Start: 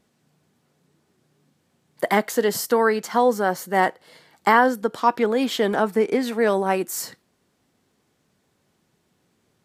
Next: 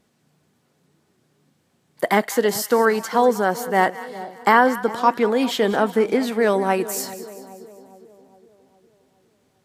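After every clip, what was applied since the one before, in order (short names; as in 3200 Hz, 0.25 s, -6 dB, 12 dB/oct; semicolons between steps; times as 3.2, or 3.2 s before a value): split-band echo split 860 Hz, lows 0.409 s, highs 0.193 s, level -15 dB; gain +1.5 dB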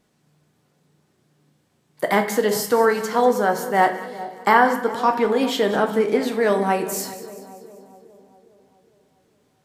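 shoebox room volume 110 m³, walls mixed, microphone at 0.44 m; gain -1.5 dB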